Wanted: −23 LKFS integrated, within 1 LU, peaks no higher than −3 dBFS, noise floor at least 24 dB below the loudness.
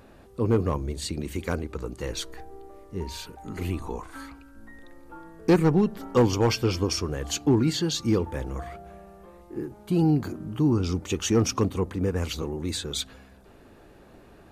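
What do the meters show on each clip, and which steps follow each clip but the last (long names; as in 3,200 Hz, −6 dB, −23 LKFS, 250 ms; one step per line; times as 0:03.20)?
share of clipped samples 0.3%; peaks flattened at −13.5 dBFS; integrated loudness −26.5 LKFS; sample peak −13.5 dBFS; target loudness −23.0 LKFS
→ clipped peaks rebuilt −13.5 dBFS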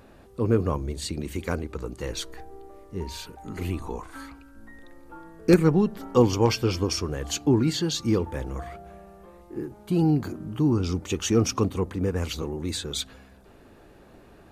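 share of clipped samples 0.0%; integrated loudness −26.0 LKFS; sample peak −4.5 dBFS; target loudness −23.0 LKFS
→ level +3 dB
brickwall limiter −3 dBFS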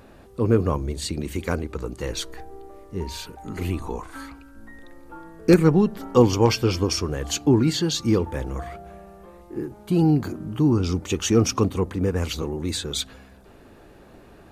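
integrated loudness −23.0 LKFS; sample peak −3.0 dBFS; background noise floor −49 dBFS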